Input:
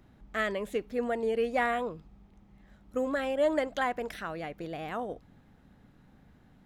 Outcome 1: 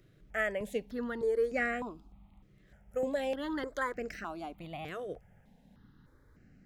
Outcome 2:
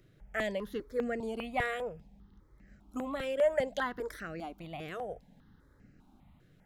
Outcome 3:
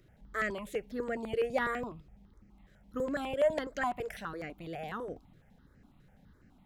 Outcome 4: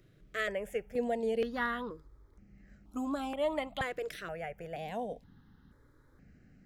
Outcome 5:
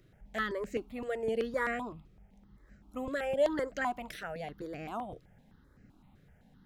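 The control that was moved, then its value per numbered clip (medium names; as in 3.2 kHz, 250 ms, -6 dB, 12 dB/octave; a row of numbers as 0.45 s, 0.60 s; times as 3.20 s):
stepped phaser, rate: 3.3 Hz, 5 Hz, 12 Hz, 2.1 Hz, 7.8 Hz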